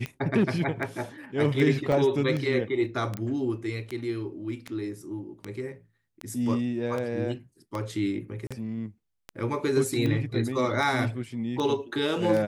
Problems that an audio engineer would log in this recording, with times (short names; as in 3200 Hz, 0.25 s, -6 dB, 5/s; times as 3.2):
tick 78 rpm -19 dBFS
1.92 gap 3.1 ms
3.17 pop -19 dBFS
8.47–8.51 gap 36 ms